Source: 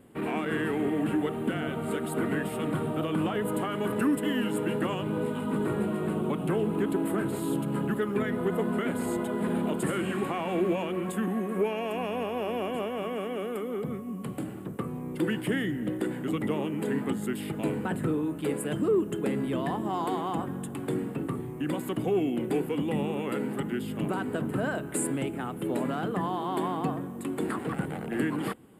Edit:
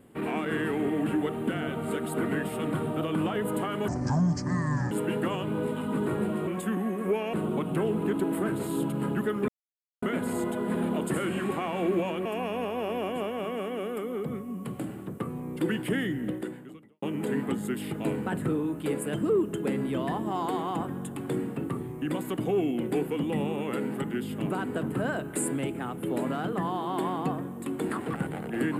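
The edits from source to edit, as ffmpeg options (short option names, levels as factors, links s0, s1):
-filter_complex "[0:a]asplit=9[s0][s1][s2][s3][s4][s5][s6][s7][s8];[s0]atrim=end=3.884[s9];[s1]atrim=start=3.88:end=4.5,asetpts=PTS-STARTPTS,asetrate=26460,aresample=44100[s10];[s2]atrim=start=4.496:end=6.062[s11];[s3]atrim=start=10.978:end=11.842[s12];[s4]atrim=start=6.058:end=8.21,asetpts=PTS-STARTPTS,afade=t=out:st=2.148:d=0.004:c=hsin[s13];[s5]atrim=start=8.21:end=8.75,asetpts=PTS-STARTPTS,volume=0[s14];[s6]atrim=start=8.75:end=10.982,asetpts=PTS-STARTPTS,afade=t=in:d=0.004:c=hsin[s15];[s7]atrim=start=11.838:end=16.61,asetpts=PTS-STARTPTS,afade=t=out:st=4.012:d=0.76:c=qua[s16];[s8]atrim=start=16.61,asetpts=PTS-STARTPTS,afade=t=in:d=0.004:c=hsin[s17];[s9][s10]acrossfade=d=0.004:c1=hsin:c2=hsin[s18];[s18][s11]acrossfade=d=0.004:c1=hsin:c2=hsin[s19];[s19][s12]acrossfade=d=0.004:c1=hsin:c2=hsin[s20];[s13][s14][s15]concat=n=3:v=0:a=1[s21];[s20][s21]acrossfade=d=0.004:c1=hsin:c2=hsin[s22];[s16][s17]concat=n=2:v=0:a=1[s23];[s22][s23]acrossfade=d=0.004:c1=hsin:c2=hsin"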